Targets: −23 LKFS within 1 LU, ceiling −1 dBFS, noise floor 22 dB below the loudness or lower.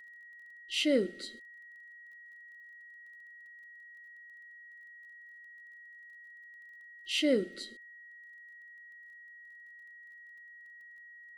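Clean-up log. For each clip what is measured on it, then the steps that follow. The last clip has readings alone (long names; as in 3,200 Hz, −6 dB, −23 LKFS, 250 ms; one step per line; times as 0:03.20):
crackle rate 15 per second; interfering tone 1,900 Hz; level of the tone −50 dBFS; integrated loudness −32.0 LKFS; sample peak −15.5 dBFS; target loudness −23.0 LKFS
→ click removal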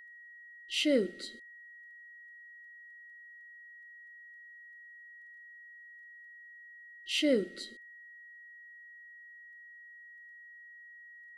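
crackle rate 0 per second; interfering tone 1,900 Hz; level of the tone −50 dBFS
→ notch filter 1,900 Hz, Q 30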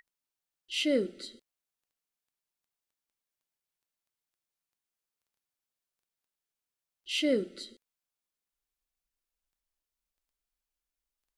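interfering tone none found; integrated loudness −31.0 LKFS; sample peak −15.5 dBFS; target loudness −23.0 LKFS
→ level +8 dB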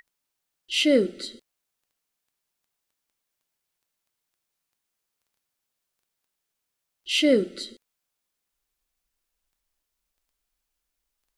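integrated loudness −23.0 LKFS; sample peak −7.5 dBFS; background noise floor −82 dBFS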